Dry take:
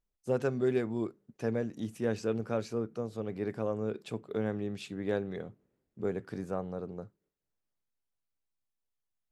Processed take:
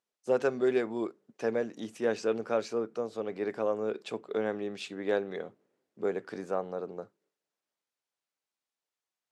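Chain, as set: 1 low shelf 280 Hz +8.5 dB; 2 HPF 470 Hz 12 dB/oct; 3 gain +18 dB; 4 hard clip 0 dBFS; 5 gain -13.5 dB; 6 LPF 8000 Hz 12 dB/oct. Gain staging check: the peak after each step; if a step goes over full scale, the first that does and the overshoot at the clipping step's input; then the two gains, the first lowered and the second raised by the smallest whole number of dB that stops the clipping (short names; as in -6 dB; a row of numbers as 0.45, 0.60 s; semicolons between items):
-14.5, -19.5, -1.5, -1.5, -15.0, -15.0 dBFS; no overload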